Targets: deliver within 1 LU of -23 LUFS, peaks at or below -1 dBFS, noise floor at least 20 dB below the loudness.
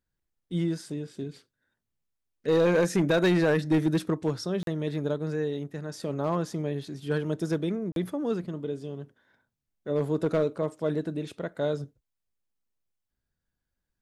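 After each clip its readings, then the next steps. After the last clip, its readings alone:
clipped samples 0.6%; clipping level -17.5 dBFS; dropouts 2; longest dropout 42 ms; loudness -28.5 LUFS; peak level -17.5 dBFS; loudness target -23.0 LUFS
-> clip repair -17.5 dBFS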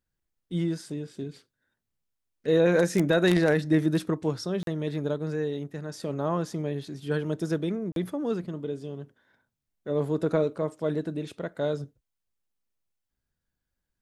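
clipped samples 0.0%; dropouts 2; longest dropout 42 ms
-> interpolate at 4.63/7.92 s, 42 ms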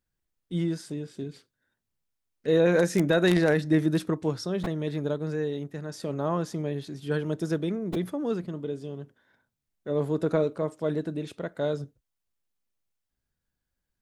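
dropouts 0; loudness -28.0 LUFS; peak level -8.5 dBFS; loudness target -23.0 LUFS
-> trim +5 dB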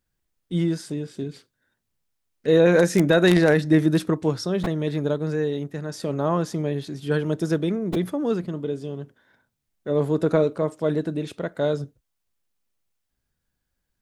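loudness -23.0 LUFS; peak level -3.5 dBFS; noise floor -79 dBFS

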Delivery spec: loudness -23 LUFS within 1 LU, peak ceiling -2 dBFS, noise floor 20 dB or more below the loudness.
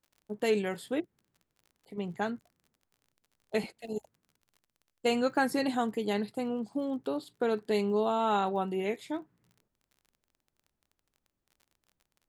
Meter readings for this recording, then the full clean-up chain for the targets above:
tick rate 34 per s; loudness -32.0 LUFS; peak level -16.0 dBFS; loudness target -23.0 LUFS
-> de-click; trim +9 dB

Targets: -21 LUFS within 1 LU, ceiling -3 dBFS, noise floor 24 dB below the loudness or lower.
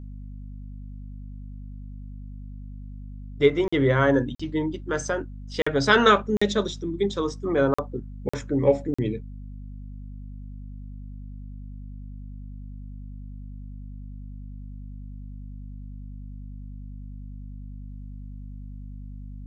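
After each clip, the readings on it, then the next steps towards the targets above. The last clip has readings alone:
dropouts 7; longest dropout 45 ms; hum 50 Hz; highest harmonic 250 Hz; hum level -36 dBFS; loudness -24.0 LUFS; peak level -4.0 dBFS; loudness target -21.0 LUFS
-> interpolate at 3.68/4.35/5.62/6.37/7.74/8.29/8.94 s, 45 ms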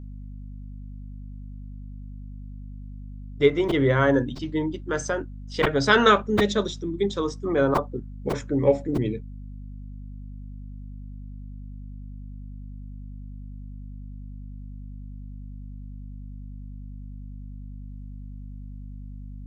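dropouts 0; hum 50 Hz; highest harmonic 250 Hz; hum level -36 dBFS
-> hum notches 50/100/150/200/250 Hz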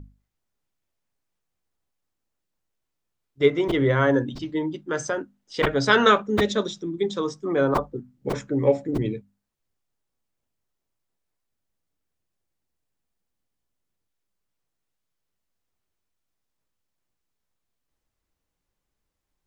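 hum not found; loudness -23.5 LUFS; peak level -3.5 dBFS; loudness target -21.0 LUFS
-> trim +2.5 dB; peak limiter -3 dBFS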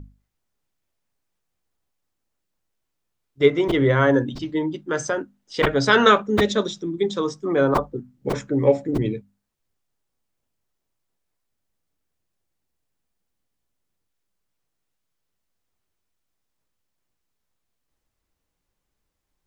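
loudness -21.0 LUFS; peak level -3.0 dBFS; noise floor -79 dBFS

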